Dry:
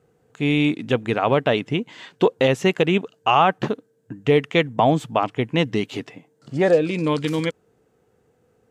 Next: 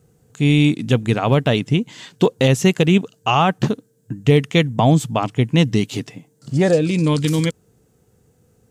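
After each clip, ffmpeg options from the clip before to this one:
-af "bass=f=250:g=12,treble=f=4k:g=14,volume=-1dB"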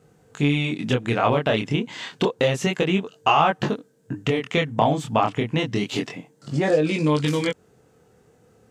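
-filter_complex "[0:a]acompressor=threshold=-19dB:ratio=6,flanger=delay=19.5:depth=7.9:speed=0.29,asplit=2[a][b];[b]highpass=f=720:p=1,volume=14dB,asoftclip=type=tanh:threshold=-2dB[c];[a][c]amix=inputs=2:normalize=0,lowpass=f=1.9k:p=1,volume=-6dB,volume=3dB"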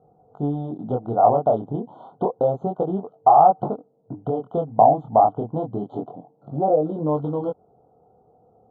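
-af "lowpass=f=740:t=q:w=5.8,afftfilt=real='re*eq(mod(floor(b*sr/1024/1500),2),0)':imag='im*eq(mod(floor(b*sr/1024/1500),2),0)':win_size=1024:overlap=0.75,volume=-5dB"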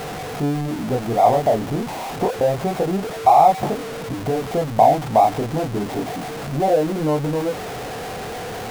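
-af "aeval=exprs='val(0)+0.5*0.0631*sgn(val(0))':c=same"

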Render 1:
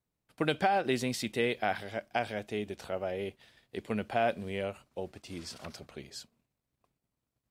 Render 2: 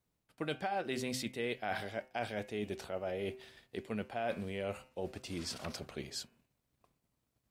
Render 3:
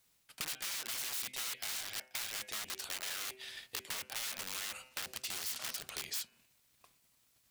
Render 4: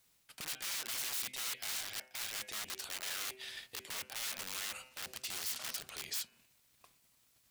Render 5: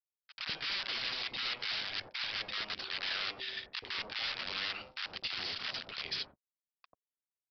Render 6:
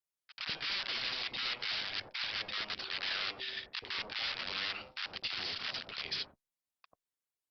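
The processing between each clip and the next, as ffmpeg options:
-af "bandreject=f=128.5:t=h:w=4,bandreject=f=257:t=h:w=4,bandreject=f=385.5:t=h:w=4,bandreject=f=514:t=h:w=4,bandreject=f=642.5:t=h:w=4,bandreject=f=771:t=h:w=4,bandreject=f=899.5:t=h:w=4,bandreject=f=1.028k:t=h:w=4,bandreject=f=1.1565k:t=h:w=4,bandreject=f=1.285k:t=h:w=4,bandreject=f=1.4135k:t=h:w=4,bandreject=f=1.542k:t=h:w=4,bandreject=f=1.6705k:t=h:w=4,bandreject=f=1.799k:t=h:w=4,bandreject=f=1.9275k:t=h:w=4,bandreject=f=2.056k:t=h:w=4,bandreject=f=2.1845k:t=h:w=4,bandreject=f=2.313k:t=h:w=4,bandreject=f=2.4415k:t=h:w=4,bandreject=f=2.57k:t=h:w=4,bandreject=f=2.6985k:t=h:w=4,bandreject=f=2.827k:t=h:w=4,bandreject=f=2.9555k:t=h:w=4,areverse,acompressor=threshold=-39dB:ratio=4,areverse,volume=3.5dB"
-af "aeval=exprs='(mod(75*val(0)+1,2)-1)/75':c=same,tiltshelf=f=1.1k:g=-9.5,acompressor=threshold=-46dB:ratio=3,volume=7dB"
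-af "alimiter=level_in=4.5dB:limit=-24dB:level=0:latency=1:release=78,volume=-4.5dB,volume=1dB"
-filter_complex "[0:a]aresample=11025,aeval=exprs='sgn(val(0))*max(abs(val(0))-0.00112,0)':c=same,aresample=44100,acrossover=split=910[a][b];[a]adelay=90[c];[c][b]amix=inputs=2:normalize=0,volume=8dB"
-ar 48000 -c:a libopus -b:a 48k

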